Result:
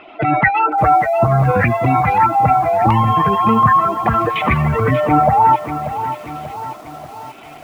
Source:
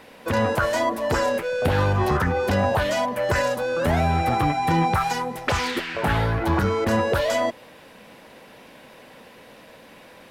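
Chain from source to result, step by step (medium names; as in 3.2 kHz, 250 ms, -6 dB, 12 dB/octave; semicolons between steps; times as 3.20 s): spectral contrast enhancement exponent 1.9; LFO low-pass square 0.51 Hz 850–1900 Hz; in parallel at +2.5 dB: volume shaper 88 bpm, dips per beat 2, -7 dB, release 182 ms; on the sum: speed mistake 33 rpm record played at 45 rpm; bit-crushed delay 587 ms, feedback 55%, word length 6-bit, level -10.5 dB; trim -1 dB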